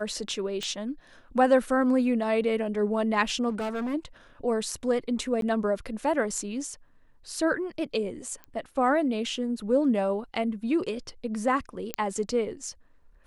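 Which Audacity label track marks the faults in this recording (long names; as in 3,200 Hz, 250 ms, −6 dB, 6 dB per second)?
0.630000	0.630000	click −19 dBFS
3.490000	3.950000	clipping −27.5 dBFS
5.410000	5.420000	drop-out 12 ms
8.440000	8.440000	click −27 dBFS
11.940000	11.940000	click −11 dBFS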